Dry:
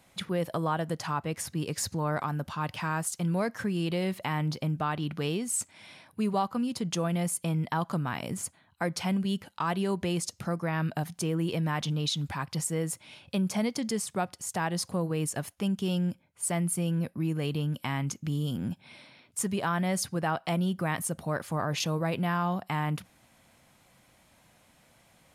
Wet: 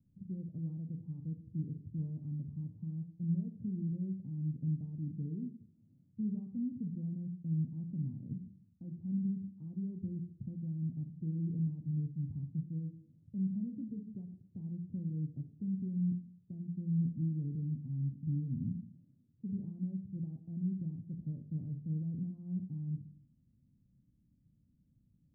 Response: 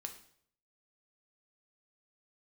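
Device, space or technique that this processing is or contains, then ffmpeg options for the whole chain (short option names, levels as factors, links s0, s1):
club heard from the street: -filter_complex "[0:a]alimiter=limit=0.0794:level=0:latency=1:release=203,lowpass=f=230:w=0.5412,lowpass=f=230:w=1.3066[s0];[1:a]atrim=start_sample=2205[s1];[s0][s1]afir=irnorm=-1:irlink=0,volume=1.12"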